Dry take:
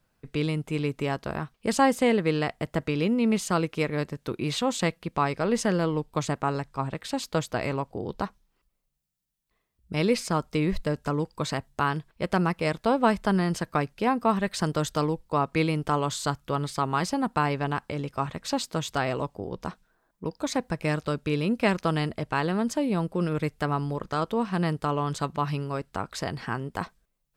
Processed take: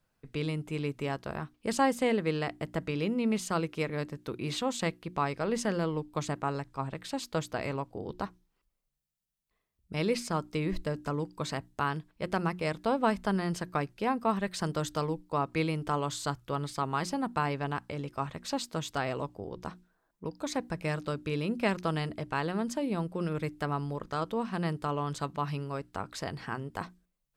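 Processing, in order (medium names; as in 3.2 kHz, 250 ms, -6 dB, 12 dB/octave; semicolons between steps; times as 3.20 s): hum notches 60/120/180/240/300/360 Hz; trim -5 dB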